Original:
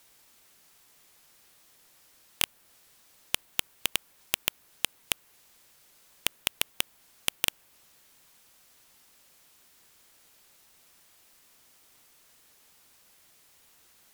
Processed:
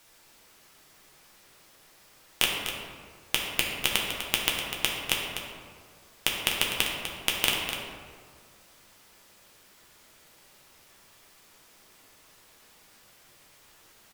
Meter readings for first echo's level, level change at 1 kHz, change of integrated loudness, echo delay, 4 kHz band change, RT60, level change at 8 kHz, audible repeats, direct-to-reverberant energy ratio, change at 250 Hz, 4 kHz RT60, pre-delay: −9.5 dB, +7.5 dB, +3.5 dB, 249 ms, +5.0 dB, 1.9 s, +2.0 dB, 1, −3.0 dB, +8.5 dB, 0.95 s, 6 ms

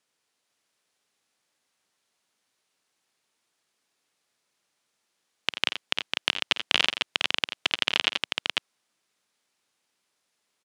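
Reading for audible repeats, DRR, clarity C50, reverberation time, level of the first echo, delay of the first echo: 3, no reverb audible, no reverb audible, no reverb audible, −15.0 dB, 51 ms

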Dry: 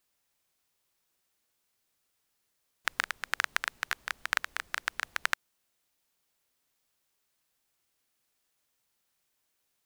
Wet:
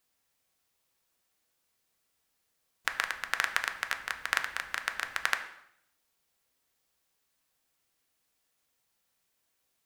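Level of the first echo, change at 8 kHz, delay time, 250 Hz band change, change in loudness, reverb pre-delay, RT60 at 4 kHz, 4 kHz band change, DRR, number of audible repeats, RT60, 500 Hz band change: no echo audible, +0.5 dB, no echo audible, +1.0 dB, +1.0 dB, 3 ms, 0.65 s, +0.5 dB, 5.5 dB, no echo audible, 0.70 s, +2.0 dB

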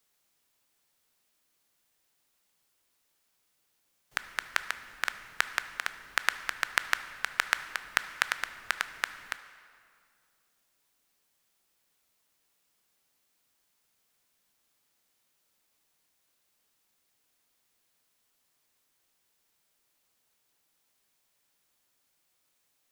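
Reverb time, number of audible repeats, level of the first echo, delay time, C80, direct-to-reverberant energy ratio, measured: 2.2 s, no echo audible, no echo audible, no echo audible, 13.0 dB, 11.0 dB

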